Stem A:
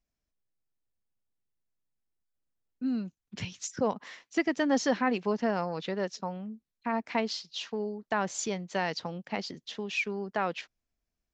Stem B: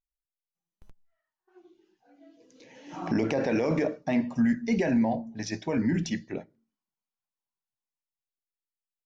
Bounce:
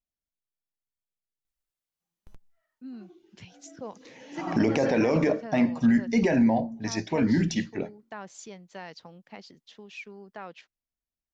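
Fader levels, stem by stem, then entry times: -11.0 dB, +3.0 dB; 0.00 s, 1.45 s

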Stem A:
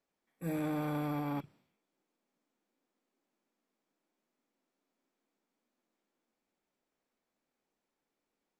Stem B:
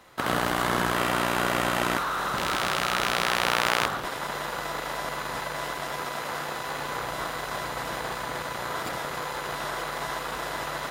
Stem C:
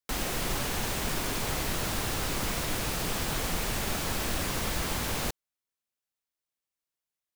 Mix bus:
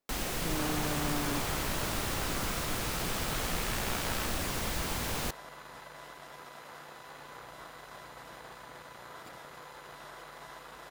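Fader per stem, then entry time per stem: -1.5 dB, -16.0 dB, -3.0 dB; 0.00 s, 0.40 s, 0.00 s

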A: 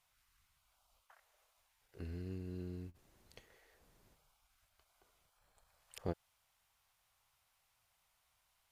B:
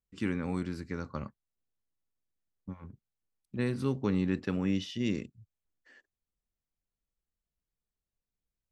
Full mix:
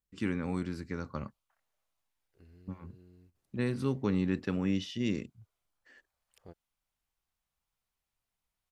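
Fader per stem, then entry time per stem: -13.0 dB, -0.5 dB; 0.40 s, 0.00 s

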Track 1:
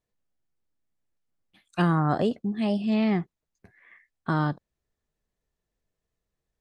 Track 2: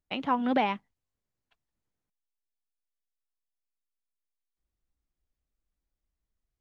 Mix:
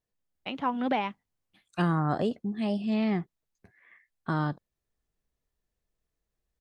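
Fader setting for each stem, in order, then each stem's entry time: -3.5 dB, -2.0 dB; 0.00 s, 0.35 s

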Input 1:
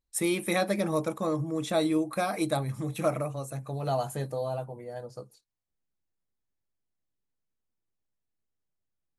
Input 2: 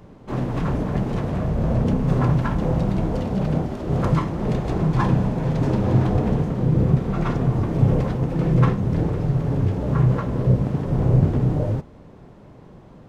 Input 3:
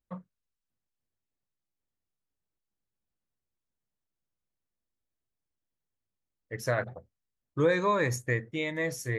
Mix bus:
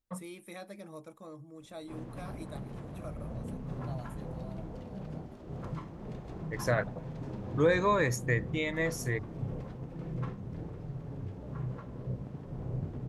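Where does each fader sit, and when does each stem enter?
-18.5 dB, -19.5 dB, -0.5 dB; 0.00 s, 1.60 s, 0.00 s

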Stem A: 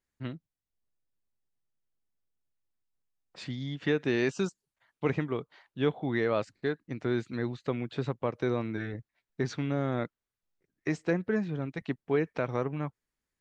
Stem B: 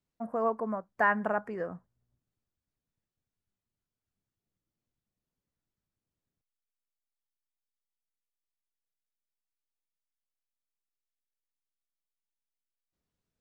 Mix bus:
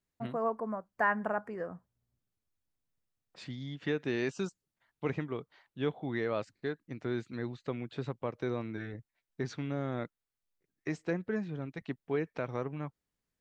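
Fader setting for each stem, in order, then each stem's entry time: -5.0 dB, -3.0 dB; 0.00 s, 0.00 s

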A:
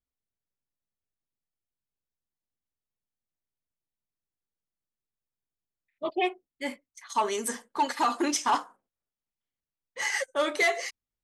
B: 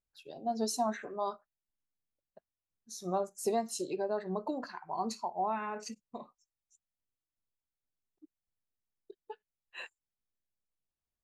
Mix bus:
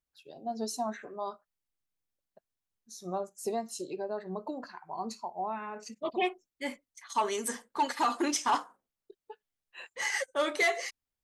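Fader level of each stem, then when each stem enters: -2.5 dB, -2.0 dB; 0.00 s, 0.00 s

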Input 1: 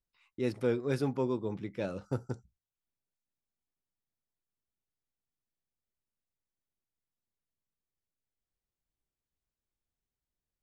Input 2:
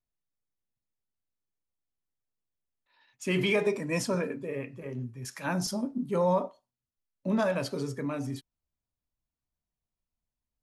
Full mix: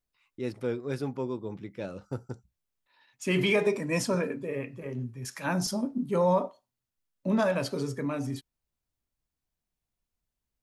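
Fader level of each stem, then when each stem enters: -1.5 dB, +1.5 dB; 0.00 s, 0.00 s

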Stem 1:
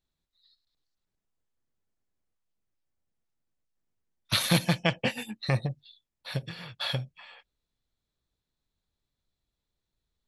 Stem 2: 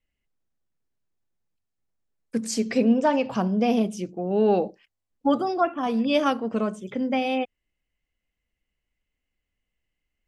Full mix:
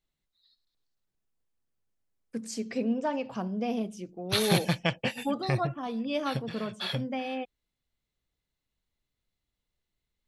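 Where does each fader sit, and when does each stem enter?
-2.0 dB, -9.0 dB; 0.00 s, 0.00 s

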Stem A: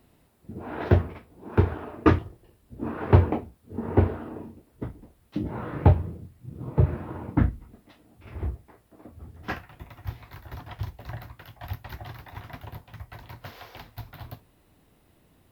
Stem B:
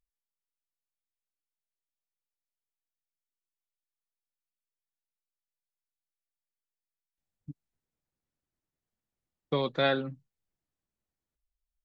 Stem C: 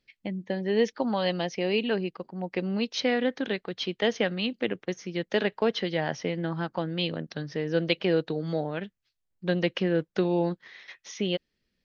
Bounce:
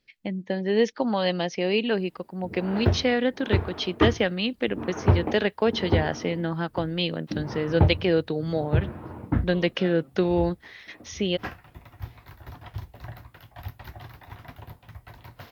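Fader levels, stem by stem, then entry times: -2.5 dB, -15.5 dB, +2.5 dB; 1.95 s, 0.00 s, 0.00 s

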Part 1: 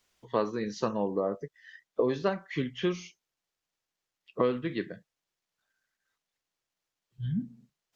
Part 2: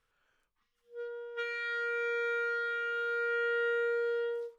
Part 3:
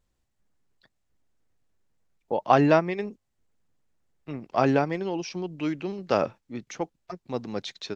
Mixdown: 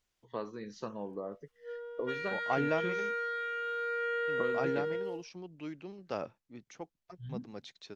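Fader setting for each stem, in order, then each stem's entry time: -10.5 dB, -2.0 dB, -13.5 dB; 0.00 s, 0.70 s, 0.00 s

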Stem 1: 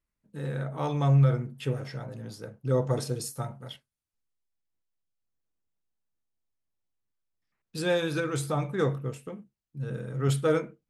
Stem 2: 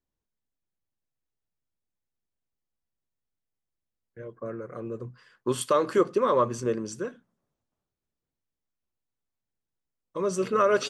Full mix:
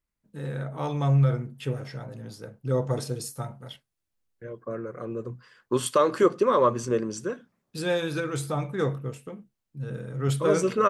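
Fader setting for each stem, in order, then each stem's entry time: 0.0 dB, +2.0 dB; 0.00 s, 0.25 s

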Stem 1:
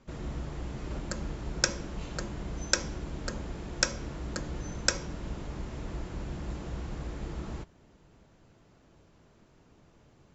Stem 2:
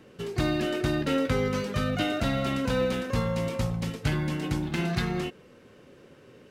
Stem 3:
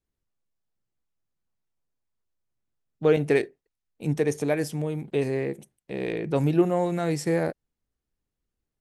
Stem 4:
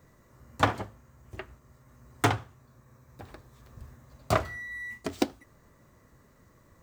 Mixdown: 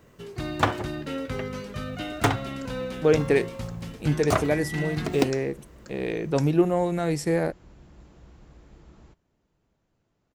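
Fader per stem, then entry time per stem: -13.5 dB, -6.0 dB, +0.5 dB, +1.5 dB; 1.50 s, 0.00 s, 0.00 s, 0.00 s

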